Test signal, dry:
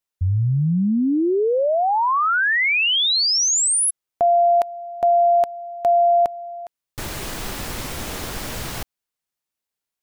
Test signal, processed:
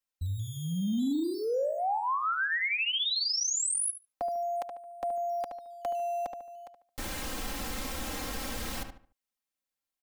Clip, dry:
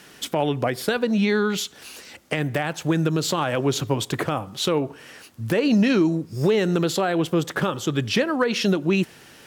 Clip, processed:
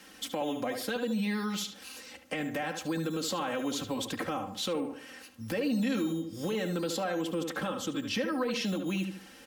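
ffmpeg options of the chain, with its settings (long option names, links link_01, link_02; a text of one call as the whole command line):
ffmpeg -i in.wav -filter_complex "[0:a]acrossover=split=350|1100|3400[link_01][link_02][link_03][link_04];[link_01]acrusher=samples=9:mix=1:aa=0.000001:lfo=1:lforange=9:lforate=0.36[link_05];[link_05][link_02][link_03][link_04]amix=inputs=4:normalize=0,aecho=1:1:3.8:0.83,asplit=2[link_06][link_07];[link_07]adelay=73,lowpass=frequency=2700:poles=1,volume=-8.5dB,asplit=2[link_08][link_09];[link_09]adelay=73,lowpass=frequency=2700:poles=1,volume=0.33,asplit=2[link_10][link_11];[link_11]adelay=73,lowpass=frequency=2700:poles=1,volume=0.33,asplit=2[link_12][link_13];[link_13]adelay=73,lowpass=frequency=2700:poles=1,volume=0.33[link_14];[link_06][link_08][link_10][link_12][link_14]amix=inputs=5:normalize=0,acompressor=threshold=-26dB:ratio=2:attack=5.7:release=29:knee=6,volume=-7.5dB" out.wav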